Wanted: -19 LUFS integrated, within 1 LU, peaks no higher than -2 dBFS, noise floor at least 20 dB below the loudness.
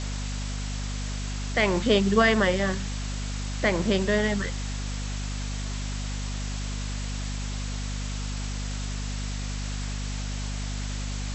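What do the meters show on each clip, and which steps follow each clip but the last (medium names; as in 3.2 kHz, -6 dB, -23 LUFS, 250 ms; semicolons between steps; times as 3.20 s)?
hum 50 Hz; highest harmonic 250 Hz; hum level -29 dBFS; noise floor -31 dBFS; noise floor target -49 dBFS; loudness -28.5 LUFS; peak level -8.0 dBFS; loudness target -19.0 LUFS
-> de-hum 50 Hz, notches 5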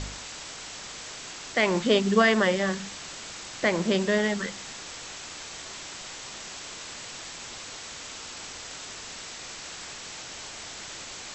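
hum not found; noise floor -41 dBFS; noise floor target -50 dBFS
-> noise reduction 9 dB, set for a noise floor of -41 dBFS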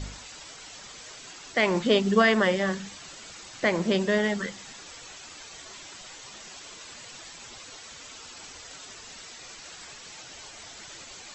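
noise floor -46 dBFS; loudness -24.5 LUFS; peak level -8.5 dBFS; loudness target -19.0 LUFS
-> trim +5.5 dB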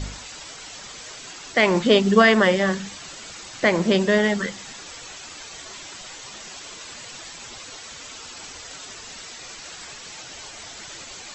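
loudness -19.0 LUFS; peak level -3.0 dBFS; noise floor -40 dBFS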